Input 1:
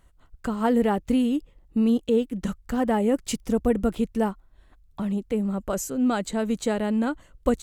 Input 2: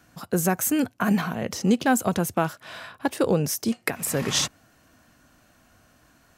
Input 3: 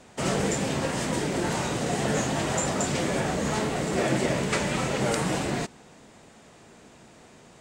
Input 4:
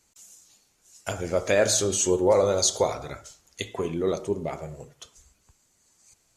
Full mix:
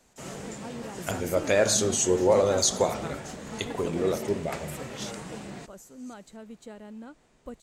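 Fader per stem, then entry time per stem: −19.0, −16.5, −13.5, −1.0 decibels; 0.00, 0.65, 0.00, 0.00 seconds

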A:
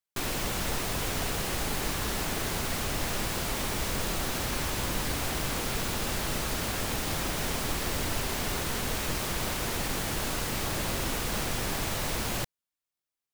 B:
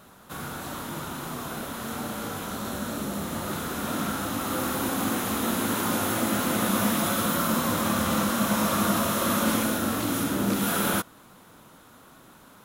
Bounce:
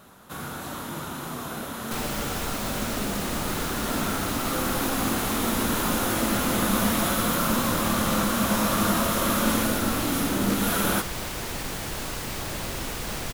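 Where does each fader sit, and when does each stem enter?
−1.0, +0.5 decibels; 1.75, 0.00 seconds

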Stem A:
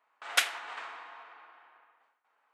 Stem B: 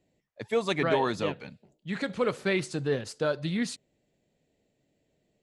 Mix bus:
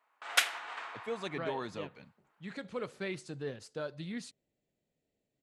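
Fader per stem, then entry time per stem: −1.0, −11.0 decibels; 0.00, 0.55 seconds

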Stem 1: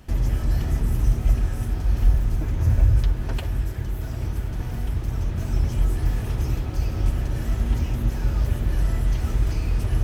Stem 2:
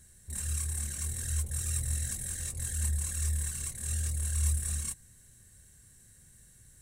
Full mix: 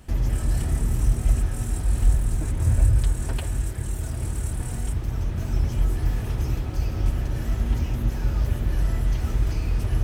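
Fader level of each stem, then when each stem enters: −1.0, −6.5 decibels; 0.00, 0.00 seconds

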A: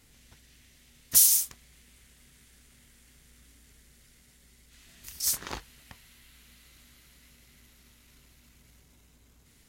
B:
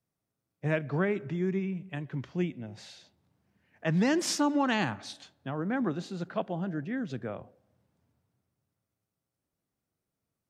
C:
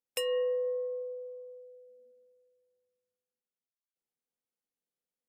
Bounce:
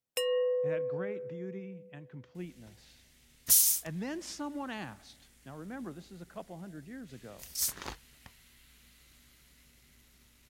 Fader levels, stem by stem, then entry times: −4.0, −12.0, +0.5 decibels; 2.35, 0.00, 0.00 seconds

